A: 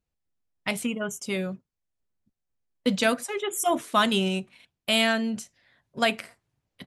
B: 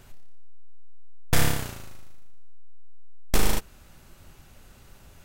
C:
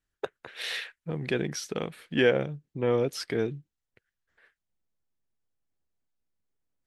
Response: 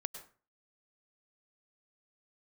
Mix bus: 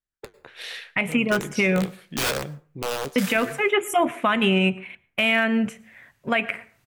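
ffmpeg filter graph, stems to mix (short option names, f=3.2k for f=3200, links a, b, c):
-filter_complex "[0:a]highshelf=f=3.3k:t=q:w=3:g=-11.5,adelay=300,volume=-1dB,asplit=2[a][b];[b]volume=-11.5dB[c];[1:a]highpass=1.2k,adelay=1850,volume=-9.5dB,afade=t=out:st=3.28:d=0.43:silence=0.298538[d];[2:a]aeval=exprs='(mod(8.41*val(0)+1,2)-1)/8.41':c=same,flanger=delay=5.5:depth=8.8:regen=-67:speed=0.81:shape=sinusoidal,volume=-8.5dB,asplit=2[e][f];[f]volume=-10.5dB[g];[3:a]atrim=start_sample=2205[h];[c][g]amix=inputs=2:normalize=0[i];[i][h]afir=irnorm=-1:irlink=0[j];[a][d][e][j]amix=inputs=4:normalize=0,dynaudnorm=f=200:g=3:m=10.5dB,alimiter=limit=-10.5dB:level=0:latency=1:release=133"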